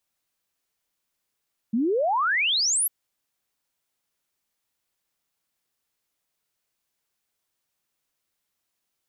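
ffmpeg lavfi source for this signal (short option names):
-f lavfi -i "aevalsrc='0.1*clip(min(t,1.15-t)/0.01,0,1)*sin(2*PI*210*1.15/log(12000/210)*(exp(log(12000/210)*t/1.15)-1))':d=1.15:s=44100"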